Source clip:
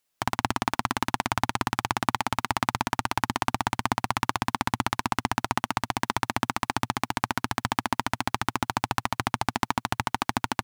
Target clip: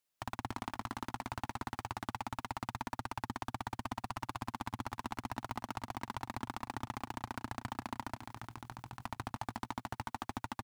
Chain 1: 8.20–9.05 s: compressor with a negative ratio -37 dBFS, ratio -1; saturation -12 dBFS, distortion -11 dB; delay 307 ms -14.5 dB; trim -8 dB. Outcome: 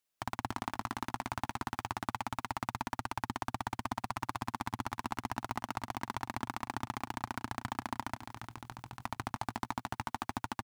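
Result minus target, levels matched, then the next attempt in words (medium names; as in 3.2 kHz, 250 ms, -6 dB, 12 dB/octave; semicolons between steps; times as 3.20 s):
saturation: distortion -6 dB
8.20–9.05 s: compressor with a negative ratio -37 dBFS, ratio -1; saturation -19.5 dBFS, distortion -5 dB; delay 307 ms -14.5 dB; trim -8 dB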